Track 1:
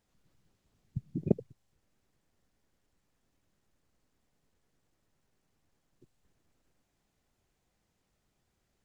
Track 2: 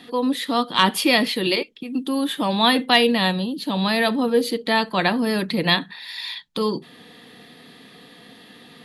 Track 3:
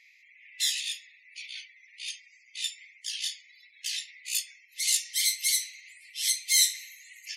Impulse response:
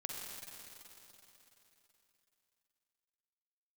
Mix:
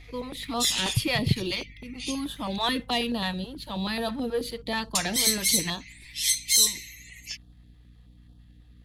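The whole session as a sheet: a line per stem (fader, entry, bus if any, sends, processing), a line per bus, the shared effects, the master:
-3.0 dB, 0.00 s, no send, resonant low shelf 170 Hz +13.5 dB, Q 1.5
5.65 s -11.5 dB -> 5.9 s -22 dB, 0.00 s, no send, sample leveller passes 1; hum 50 Hz, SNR 18 dB
+1.0 dB, 0.00 s, muted 2.56–4.95, no send, comb 6.9 ms, depth 70%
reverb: off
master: hum 60 Hz, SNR 25 dB; stepped notch 9.3 Hz 210–2100 Hz

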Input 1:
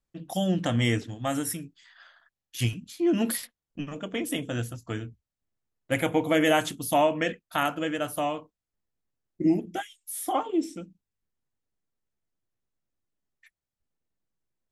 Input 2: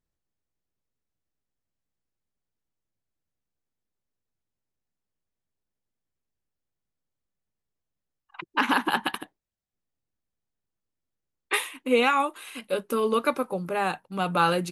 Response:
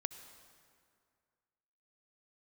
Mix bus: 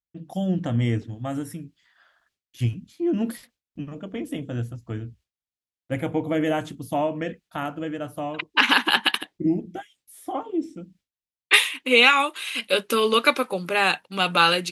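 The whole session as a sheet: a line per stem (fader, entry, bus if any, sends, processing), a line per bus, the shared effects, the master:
-4.0 dB, 0.00 s, no send, tilt -2.5 dB/oct
-1.0 dB, 0.00 s, no send, weighting filter D; AGC gain up to 7 dB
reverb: off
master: gate with hold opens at -55 dBFS; HPF 40 Hz

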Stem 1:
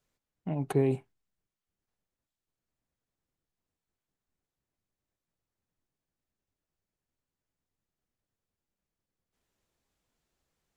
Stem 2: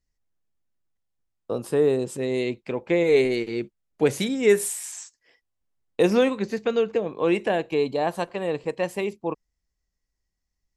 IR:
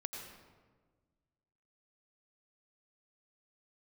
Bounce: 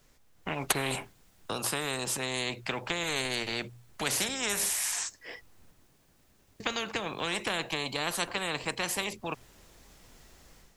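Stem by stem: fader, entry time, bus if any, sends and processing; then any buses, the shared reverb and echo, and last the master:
-1.5 dB, 0.00 s, no send, dry
-15.0 dB, 0.00 s, muted 5.71–6.6, no send, notches 60/120 Hz; three-band squash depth 40%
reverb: off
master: AGC gain up to 9 dB; spectral compressor 4:1

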